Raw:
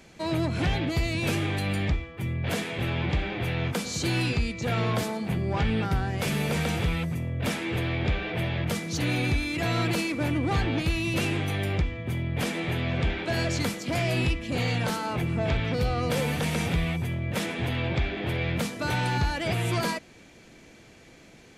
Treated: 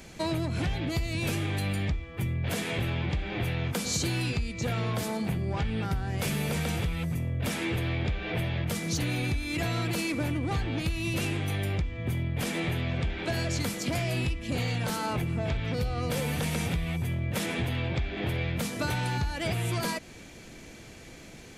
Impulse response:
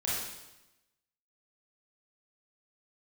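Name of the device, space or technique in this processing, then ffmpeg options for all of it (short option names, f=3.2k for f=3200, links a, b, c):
ASMR close-microphone chain: -af "lowshelf=f=100:g=7,acompressor=threshold=-30dB:ratio=6,highshelf=f=6.8k:g=7.5,volume=3dB"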